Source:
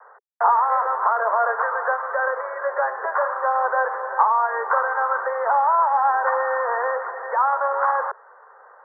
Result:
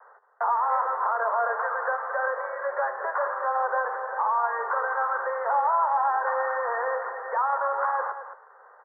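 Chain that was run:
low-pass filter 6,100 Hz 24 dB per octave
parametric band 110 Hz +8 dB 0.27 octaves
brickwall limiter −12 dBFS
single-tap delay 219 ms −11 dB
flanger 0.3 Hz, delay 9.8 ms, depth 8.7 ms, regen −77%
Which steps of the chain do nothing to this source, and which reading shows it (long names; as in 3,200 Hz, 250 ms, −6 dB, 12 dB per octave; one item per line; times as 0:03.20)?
low-pass filter 6,100 Hz: nothing at its input above 1,900 Hz
parametric band 110 Hz: nothing at its input below 380 Hz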